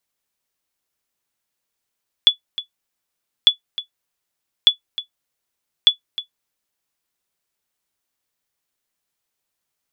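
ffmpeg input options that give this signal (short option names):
-f lavfi -i "aevalsrc='0.841*(sin(2*PI*3430*mod(t,1.2))*exp(-6.91*mod(t,1.2)/0.11)+0.178*sin(2*PI*3430*max(mod(t,1.2)-0.31,0))*exp(-6.91*max(mod(t,1.2)-0.31,0)/0.11))':d=4.8:s=44100"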